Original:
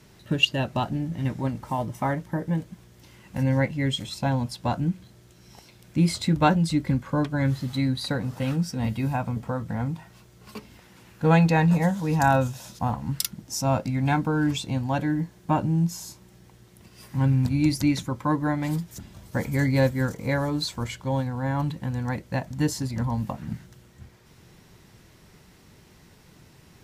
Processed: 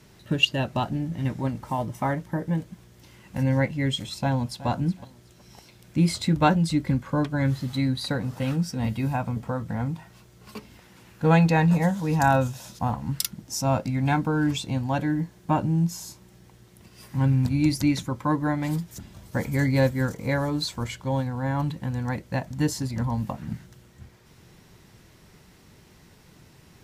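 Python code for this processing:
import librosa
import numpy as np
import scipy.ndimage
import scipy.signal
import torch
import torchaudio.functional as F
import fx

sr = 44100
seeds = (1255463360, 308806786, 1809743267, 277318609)

y = fx.echo_throw(x, sr, start_s=4.13, length_s=0.54, ms=370, feedback_pct=25, wet_db=-16.0)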